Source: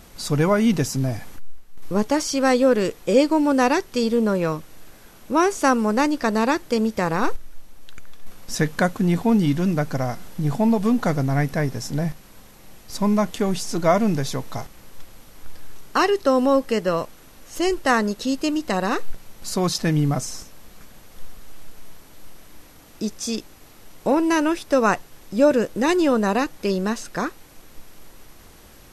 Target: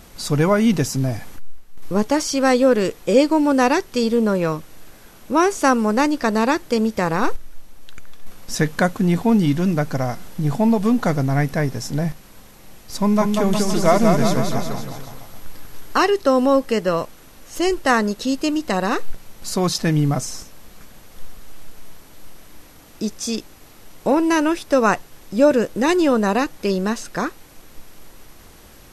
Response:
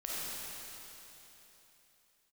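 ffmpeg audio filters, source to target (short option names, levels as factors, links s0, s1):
-filter_complex "[0:a]asettb=1/sr,asplit=3[s0][s1][s2];[s0]atrim=end=12.974[s3];[s1]atrim=start=12.97:end=15.98,asetpts=PTS-STARTPTS,afade=t=in:d=0.004:c=qsin,afade=t=out:st=3.006:d=0.004:c=qsin,aecho=1:1:190|361|514.9|653.4|778.1:0.631|0.398|0.251|0.158|0.1,atrim=end_sample=132741[s4];[s2]atrim=start=15.976[s5];[s3][s4]acrossfade=d=0.004:c1=hsin:c2=qsin[s6];[s6][s5]acrossfade=d=0.004:c1=qsin:c2=hsin,volume=1.26"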